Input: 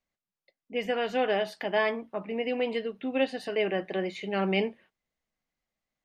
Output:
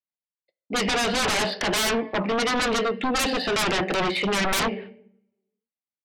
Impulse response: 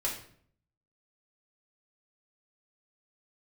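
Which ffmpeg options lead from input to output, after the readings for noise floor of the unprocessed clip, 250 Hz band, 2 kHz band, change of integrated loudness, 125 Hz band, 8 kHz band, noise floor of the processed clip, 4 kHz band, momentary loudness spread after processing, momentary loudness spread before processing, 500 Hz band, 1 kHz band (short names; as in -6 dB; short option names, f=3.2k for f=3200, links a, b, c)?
under -85 dBFS, +5.5 dB, +8.5 dB, +6.5 dB, +6.5 dB, n/a, under -85 dBFS, +12.5 dB, 4 LU, 7 LU, +2.0 dB, +8.5 dB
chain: -filter_complex "[0:a]highpass=97,agate=range=-33dB:threshold=-50dB:ratio=3:detection=peak,aresample=11025,aresample=44100,asplit=2[a][b];[1:a]atrim=start_sample=2205,asetrate=38808,aresample=44100[c];[b][c]afir=irnorm=-1:irlink=0,volume=-19dB[d];[a][d]amix=inputs=2:normalize=0,aeval=exprs='0.266*sin(PI/2*10*val(0)/0.266)':c=same,volume=-8.5dB"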